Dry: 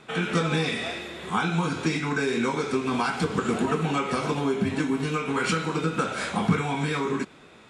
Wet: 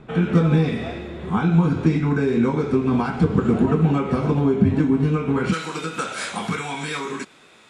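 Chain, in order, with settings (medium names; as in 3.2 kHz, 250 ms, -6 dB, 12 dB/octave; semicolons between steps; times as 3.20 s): tilt EQ -4 dB/octave, from 5.52 s +2 dB/octave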